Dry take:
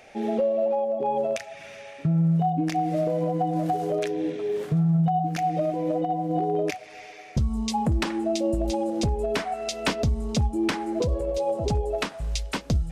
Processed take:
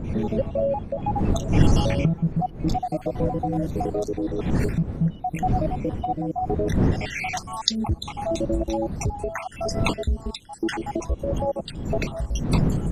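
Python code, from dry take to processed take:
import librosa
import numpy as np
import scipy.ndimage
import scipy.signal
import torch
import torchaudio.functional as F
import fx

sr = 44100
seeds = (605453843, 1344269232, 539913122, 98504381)

y = fx.spec_dropout(x, sr, seeds[0], share_pct=63)
y = fx.recorder_agc(y, sr, target_db=-21.5, rise_db_per_s=42.0, max_gain_db=30)
y = fx.dmg_wind(y, sr, seeds[1], corner_hz=180.0, level_db=-28.0)
y = F.gain(torch.from_numpy(y), 1.5).numpy()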